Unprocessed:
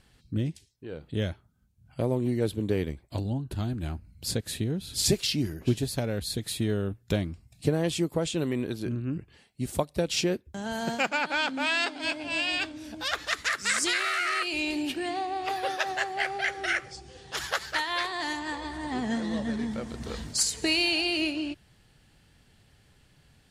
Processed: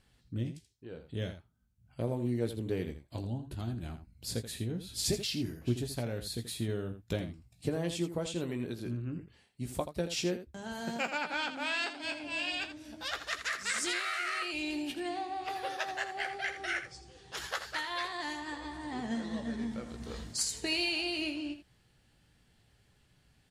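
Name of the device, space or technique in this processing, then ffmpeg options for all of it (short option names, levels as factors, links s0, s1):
slapback doubling: -filter_complex "[0:a]asplit=3[s0][s1][s2];[s1]adelay=17,volume=0.376[s3];[s2]adelay=82,volume=0.299[s4];[s0][s3][s4]amix=inputs=3:normalize=0,volume=0.422"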